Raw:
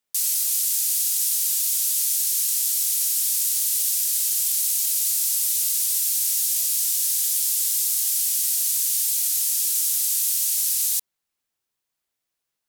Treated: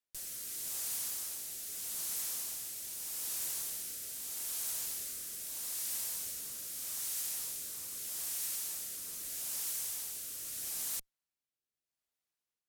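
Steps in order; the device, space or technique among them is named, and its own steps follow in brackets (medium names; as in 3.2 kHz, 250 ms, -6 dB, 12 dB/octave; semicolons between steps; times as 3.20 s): overdriven rotary cabinet (valve stage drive 28 dB, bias 0.45; rotary cabinet horn 0.8 Hz); trim -6 dB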